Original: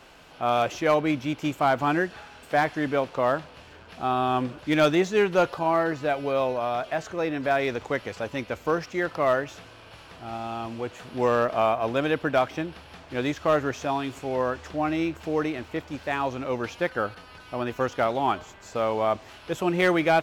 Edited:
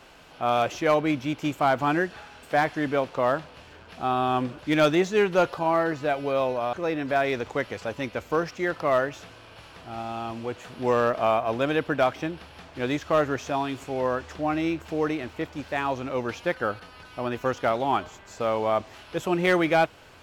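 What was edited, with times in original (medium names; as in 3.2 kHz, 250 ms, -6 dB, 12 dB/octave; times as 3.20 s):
6.73–7.08 s: delete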